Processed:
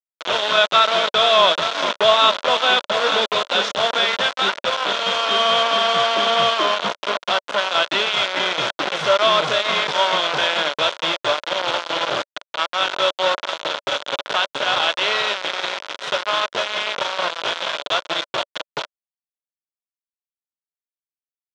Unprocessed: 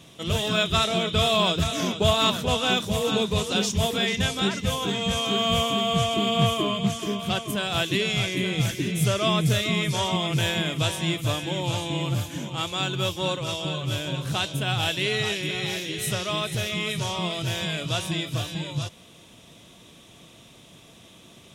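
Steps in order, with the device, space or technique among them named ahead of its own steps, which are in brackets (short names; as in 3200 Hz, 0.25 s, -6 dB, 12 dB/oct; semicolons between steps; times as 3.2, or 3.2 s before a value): hand-held game console (bit-crush 4-bit; speaker cabinet 460–5000 Hz, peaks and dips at 580 Hz +9 dB, 990 Hz +6 dB, 1400 Hz +8 dB, 3400 Hz +4 dB, 4800 Hz -3 dB); gain +3.5 dB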